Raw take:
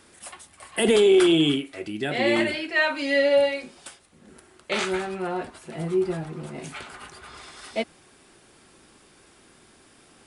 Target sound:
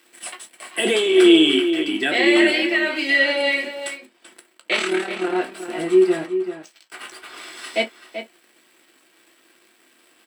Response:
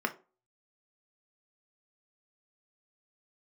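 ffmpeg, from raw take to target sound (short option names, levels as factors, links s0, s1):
-filter_complex "[0:a]aemphasis=mode=production:type=75fm,acontrast=87,alimiter=limit=0.355:level=0:latency=1:release=18,asplit=3[s0][s1][s2];[s0]afade=t=out:st=2.66:d=0.02[s3];[s1]acompressor=threshold=0.1:ratio=6,afade=t=in:st=2.66:d=0.02,afade=t=out:st=3.08:d=0.02[s4];[s2]afade=t=in:st=3.08:d=0.02[s5];[s3][s4][s5]amix=inputs=3:normalize=0,asettb=1/sr,asplit=3[s6][s7][s8];[s6]atrim=end=6.264[s9];[s7]atrim=start=6.26:end=6.92,asetpts=PTS-STARTPTS,afade=t=in:d=0.004:c=qsin,afade=t=out:st=0.656:d=0.004:c=qsin,bandpass=f=5500:t=q:w=4:csg=0[s10];[s8]atrim=start=6.916[s11];[s9][s10]acrossfade=d=0.004:c1=hsin:c2=qsin[s12];[s12][s11]acrossfade=d=0.004:c1=qsin:c2=hsin,aeval=exprs='sgn(val(0))*max(abs(val(0))-0.0112,0)':c=same,asettb=1/sr,asplit=3[s13][s14][s15];[s13]atrim=end=4.764[s16];[s14]atrim=start=4.76:end=5.36,asetpts=PTS-STARTPTS,afade=t=in:d=0.004:c=qsin,afade=t=out:st=0.596:d=0.004:c=qsin,tremolo=f=37:d=0.75[s17];[s15]atrim=start=5.356[s18];[s16][s17]acrossfade=d=0.004:c1=hsin:c2=qsin[s19];[s19][s18]acrossfade=d=0.004:c1=qsin:c2=hsin,asplit=2[s20][s21];[s21]adelay=384.8,volume=0.355,highshelf=f=4000:g=-8.66[s22];[s20][s22]amix=inputs=2:normalize=0[s23];[1:a]atrim=start_sample=2205,atrim=end_sample=4410,asetrate=66150,aresample=44100[s24];[s23][s24]afir=irnorm=-1:irlink=0,volume=0.668"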